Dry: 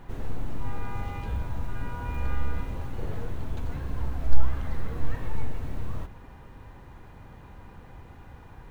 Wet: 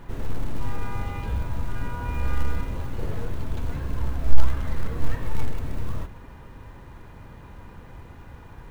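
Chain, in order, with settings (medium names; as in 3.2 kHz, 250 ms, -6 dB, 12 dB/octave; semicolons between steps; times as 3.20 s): band-stop 770 Hz, Q 12; in parallel at -10 dB: short-mantissa float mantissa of 2-bit; on the sum: trim +1 dB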